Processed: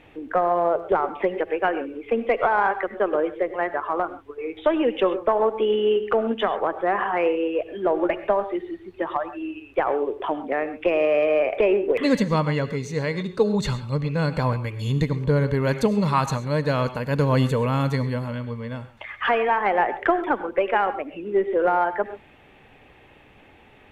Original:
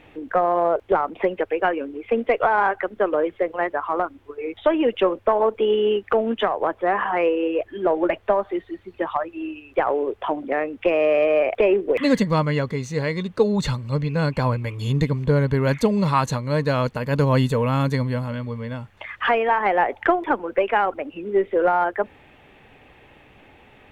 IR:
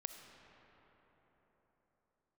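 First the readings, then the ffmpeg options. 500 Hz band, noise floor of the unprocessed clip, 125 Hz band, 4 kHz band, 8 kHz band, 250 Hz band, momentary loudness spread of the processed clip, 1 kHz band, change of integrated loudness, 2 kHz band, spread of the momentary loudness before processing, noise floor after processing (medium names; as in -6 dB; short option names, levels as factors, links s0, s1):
-1.5 dB, -53 dBFS, -1.5 dB, -1.5 dB, no reading, -1.5 dB, 8 LU, -1.5 dB, -1.5 dB, -1.5 dB, 8 LU, -52 dBFS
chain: -filter_complex "[1:a]atrim=start_sample=2205,atrim=end_sample=3969,asetrate=26901,aresample=44100[s0];[0:a][s0]afir=irnorm=-1:irlink=0"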